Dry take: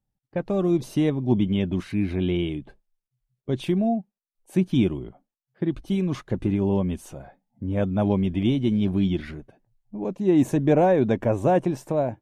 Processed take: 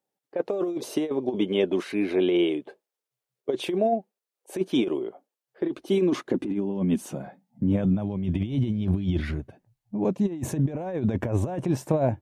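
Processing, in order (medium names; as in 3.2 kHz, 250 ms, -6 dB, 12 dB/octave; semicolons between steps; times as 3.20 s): high-pass sweep 430 Hz -> 76 Hz, 5.55–8.95 s; compressor with a negative ratio -23 dBFS, ratio -0.5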